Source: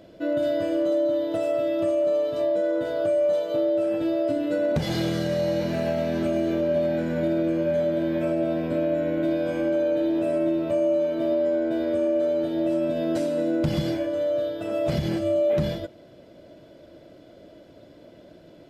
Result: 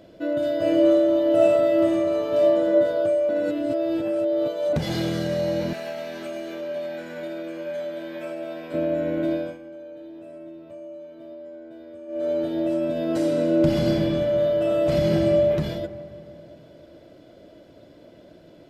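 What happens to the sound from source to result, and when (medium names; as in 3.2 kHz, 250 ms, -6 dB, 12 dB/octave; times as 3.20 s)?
0.57–2.69 s: reverb throw, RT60 1.3 s, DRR -4.5 dB
3.29–4.73 s: reverse
5.73–8.74 s: high-pass 1.1 kHz 6 dB/octave
9.34–12.31 s: dip -17 dB, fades 0.24 s
13.04–15.26 s: reverb throw, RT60 2.8 s, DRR -1 dB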